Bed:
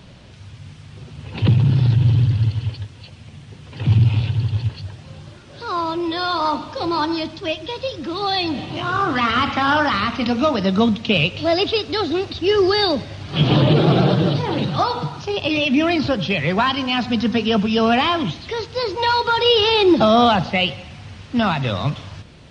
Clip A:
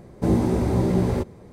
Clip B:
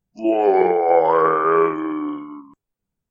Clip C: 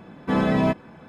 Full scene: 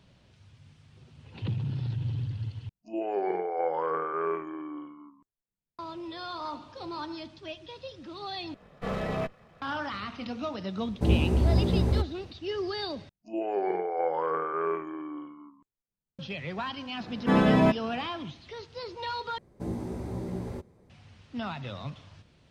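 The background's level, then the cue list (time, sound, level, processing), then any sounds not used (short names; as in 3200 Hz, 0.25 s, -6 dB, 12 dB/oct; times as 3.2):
bed -16.5 dB
2.69 replace with B -14 dB
8.54 replace with C -8.5 dB + minimum comb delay 1.6 ms
10.79 add A -7 dB + bell 71 Hz +13.5 dB 0.75 oct
13.09 replace with B -13.5 dB
16.99 add C -0.5 dB
19.38 replace with A -14 dB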